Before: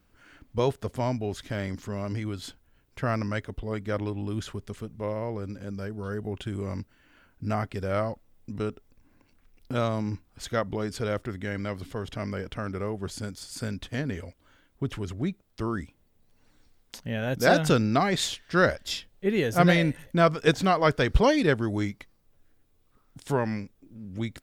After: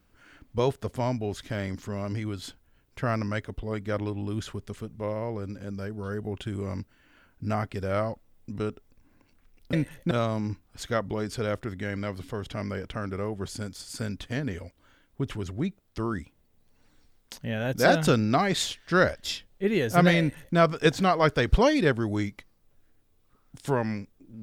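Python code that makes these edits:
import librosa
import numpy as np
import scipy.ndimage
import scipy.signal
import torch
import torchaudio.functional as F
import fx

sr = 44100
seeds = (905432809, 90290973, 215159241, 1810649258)

y = fx.edit(x, sr, fx.duplicate(start_s=19.81, length_s=0.38, to_s=9.73), tone=tone)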